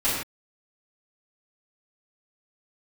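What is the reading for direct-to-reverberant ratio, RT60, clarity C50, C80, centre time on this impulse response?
-11.5 dB, no single decay rate, 0.5 dB, 3.5 dB, 58 ms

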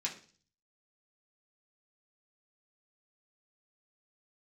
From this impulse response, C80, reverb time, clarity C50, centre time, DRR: 15.5 dB, 0.40 s, 11.0 dB, 16 ms, -3.5 dB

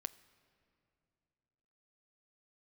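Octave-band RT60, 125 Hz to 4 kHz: 3.3 s, 3.1 s, 2.9 s, 2.5 s, 2.3 s, 1.8 s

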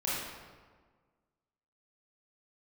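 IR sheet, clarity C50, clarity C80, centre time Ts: -2.5 dB, 1.0 dB, 98 ms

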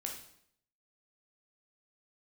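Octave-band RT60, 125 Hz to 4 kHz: 0.75 s, 0.75 s, 0.70 s, 0.65 s, 0.65 s, 0.60 s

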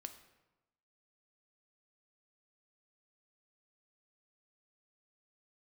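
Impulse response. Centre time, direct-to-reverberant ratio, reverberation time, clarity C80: 11 ms, 7.5 dB, 1.0 s, 13.0 dB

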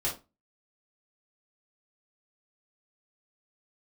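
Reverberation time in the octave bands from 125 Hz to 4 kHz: 0.30 s, 0.35 s, 0.25 s, 0.25 s, 0.20 s, 0.20 s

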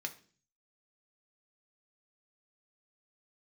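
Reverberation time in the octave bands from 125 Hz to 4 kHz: 0.75 s, 0.60 s, 0.50 s, 0.40 s, 0.40 s, 0.50 s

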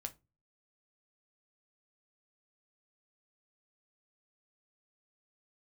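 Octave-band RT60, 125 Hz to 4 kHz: 0.50 s, 0.40 s, 0.25 s, 0.25 s, 0.20 s, 0.15 s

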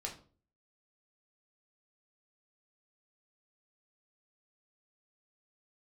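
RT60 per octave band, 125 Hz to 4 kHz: 0.60 s, 0.55 s, 0.45 s, 0.40 s, 0.30 s, 0.30 s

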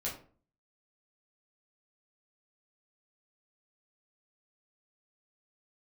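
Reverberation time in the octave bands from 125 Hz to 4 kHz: 0.55 s, 0.55 s, 0.45 s, 0.40 s, 0.35 s, 0.25 s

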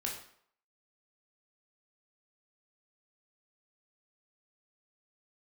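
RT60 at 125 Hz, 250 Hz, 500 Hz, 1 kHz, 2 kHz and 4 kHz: 0.45 s, 0.55 s, 0.60 s, 0.65 s, 0.55 s, 0.50 s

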